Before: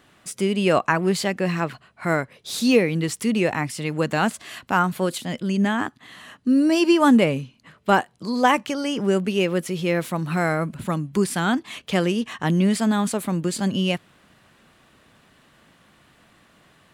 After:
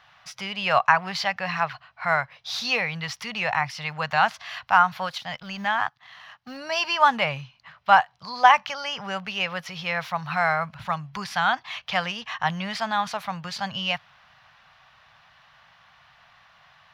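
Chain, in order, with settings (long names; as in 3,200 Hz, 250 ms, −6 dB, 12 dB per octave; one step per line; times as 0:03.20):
0:05.07–0:06.57: mu-law and A-law mismatch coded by A
drawn EQ curve 140 Hz 0 dB, 330 Hz −24 dB, 760 Hz +10 dB, 5,700 Hz +6 dB, 8,200 Hz −17 dB, 14,000 Hz −6 dB
level −5.5 dB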